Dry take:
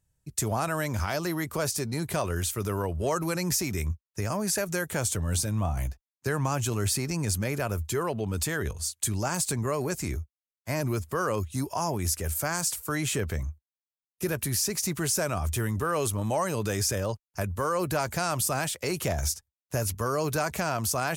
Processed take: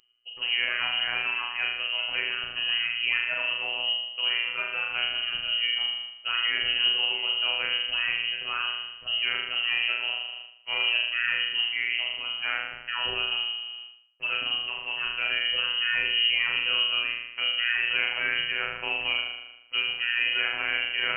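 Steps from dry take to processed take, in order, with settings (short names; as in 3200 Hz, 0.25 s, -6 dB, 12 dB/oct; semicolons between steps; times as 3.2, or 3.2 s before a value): flutter echo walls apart 6.7 m, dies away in 0.92 s; robotiser 119 Hz; reverse; upward compressor, threshold -32 dBFS; reverse; inverted band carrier 3000 Hz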